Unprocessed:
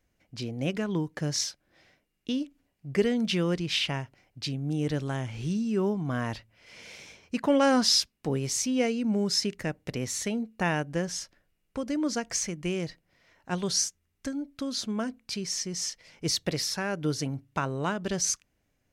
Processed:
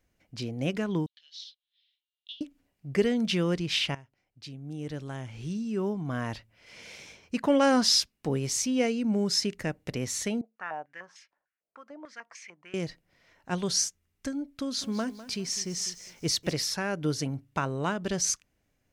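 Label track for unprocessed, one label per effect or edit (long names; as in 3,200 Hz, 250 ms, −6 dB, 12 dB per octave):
1.060000	2.410000	flat-topped band-pass 3,500 Hz, Q 3.5
3.950000	6.810000	fade in, from −17 dB
10.410000	12.740000	band-pass on a step sequencer 6.7 Hz 640–2,300 Hz
14.430000	16.520000	feedback echo at a low word length 202 ms, feedback 35%, word length 8 bits, level −14.5 dB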